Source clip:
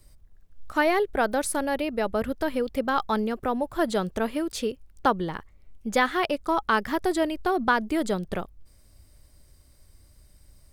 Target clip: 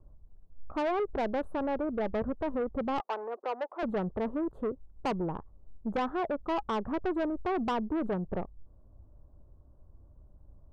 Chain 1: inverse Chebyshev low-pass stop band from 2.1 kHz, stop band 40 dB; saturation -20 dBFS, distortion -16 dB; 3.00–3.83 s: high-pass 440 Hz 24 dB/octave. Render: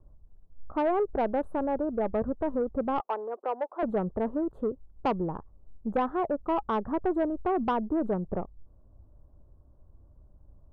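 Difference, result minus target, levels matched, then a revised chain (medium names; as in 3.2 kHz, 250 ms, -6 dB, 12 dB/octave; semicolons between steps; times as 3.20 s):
saturation: distortion -7 dB
inverse Chebyshev low-pass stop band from 2.1 kHz, stop band 40 dB; saturation -26.5 dBFS, distortion -9 dB; 3.00–3.83 s: high-pass 440 Hz 24 dB/octave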